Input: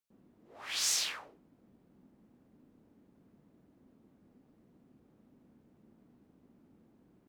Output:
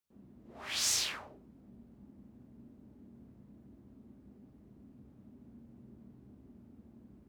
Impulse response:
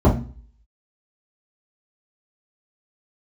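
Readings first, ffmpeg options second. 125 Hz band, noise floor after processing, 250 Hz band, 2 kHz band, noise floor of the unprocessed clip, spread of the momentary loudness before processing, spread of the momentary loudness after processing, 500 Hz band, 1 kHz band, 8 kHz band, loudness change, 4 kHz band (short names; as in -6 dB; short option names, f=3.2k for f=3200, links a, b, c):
+9.5 dB, -61 dBFS, +8.0 dB, 0.0 dB, -68 dBFS, 18 LU, 17 LU, +3.0 dB, +0.5 dB, 0.0 dB, 0.0 dB, 0.0 dB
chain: -filter_complex "[0:a]asplit=2[a][b];[1:a]atrim=start_sample=2205,adelay=20[c];[b][c]afir=irnorm=-1:irlink=0,volume=-27.5dB[d];[a][d]amix=inputs=2:normalize=0"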